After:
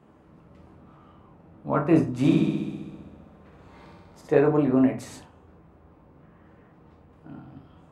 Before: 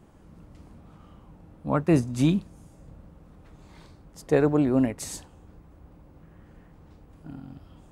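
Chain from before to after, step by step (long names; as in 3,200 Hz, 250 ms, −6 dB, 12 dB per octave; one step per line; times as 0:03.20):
high-pass filter 81 Hz
bass and treble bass −6 dB, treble −12 dB
0:02.15–0:04.31: flutter between parallel walls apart 11.1 metres, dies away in 1.4 s
on a send at −2 dB: convolution reverb RT60 0.40 s, pre-delay 7 ms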